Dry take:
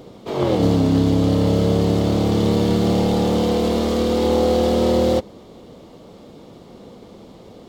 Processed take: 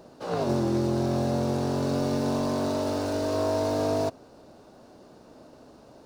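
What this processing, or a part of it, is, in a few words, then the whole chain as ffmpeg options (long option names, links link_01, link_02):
nightcore: -af "asetrate=56007,aresample=44100,volume=-9dB"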